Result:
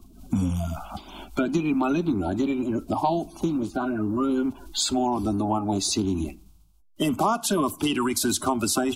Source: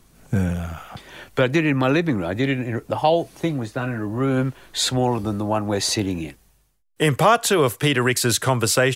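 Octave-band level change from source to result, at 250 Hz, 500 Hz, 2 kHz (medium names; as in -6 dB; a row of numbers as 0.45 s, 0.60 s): -0.5 dB, -7.5 dB, -11.5 dB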